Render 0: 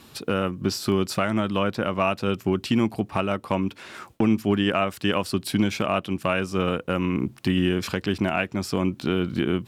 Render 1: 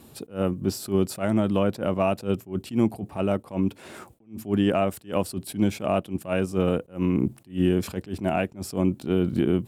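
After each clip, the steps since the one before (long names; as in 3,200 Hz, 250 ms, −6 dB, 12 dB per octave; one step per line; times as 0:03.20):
flat-topped bell 2,500 Hz −9 dB 2.9 octaves
in parallel at −2.5 dB: output level in coarse steps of 16 dB
on the sum: level that may rise only so fast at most 230 dB per second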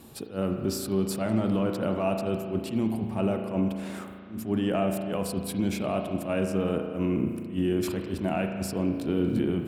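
brickwall limiter −17.5 dBFS, peak gain reduction 8.5 dB
spring reverb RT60 2 s, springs 36 ms, chirp 55 ms, DRR 4 dB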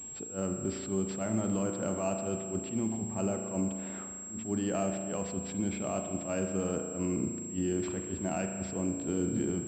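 switching amplifier with a slow clock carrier 7,600 Hz
level −5.5 dB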